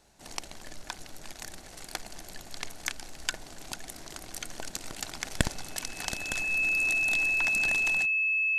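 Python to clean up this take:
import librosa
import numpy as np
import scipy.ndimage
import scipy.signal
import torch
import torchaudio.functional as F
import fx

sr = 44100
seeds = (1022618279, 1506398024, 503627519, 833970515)

y = fx.fix_declip(x, sr, threshold_db=-4.0)
y = fx.notch(y, sr, hz=2600.0, q=30.0)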